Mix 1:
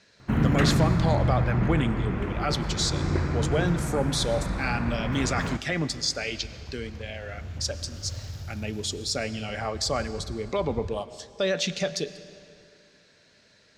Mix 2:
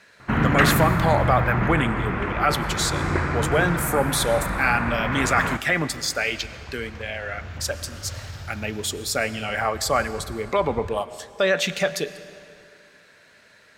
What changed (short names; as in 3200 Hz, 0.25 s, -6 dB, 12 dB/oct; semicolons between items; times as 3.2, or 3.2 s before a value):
speech: remove synth low-pass 5300 Hz, resonance Q 1.6; master: add bell 1500 Hz +11 dB 2.7 oct